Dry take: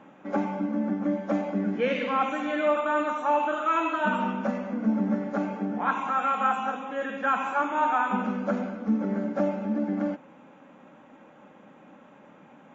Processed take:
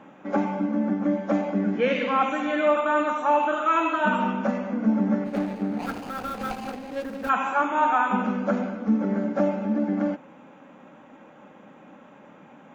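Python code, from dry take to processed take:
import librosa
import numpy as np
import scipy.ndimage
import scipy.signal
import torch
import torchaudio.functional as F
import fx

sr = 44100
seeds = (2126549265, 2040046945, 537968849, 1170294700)

y = fx.median_filter(x, sr, points=41, at=(5.24, 7.28), fade=0.02)
y = F.gain(torch.from_numpy(y), 3.0).numpy()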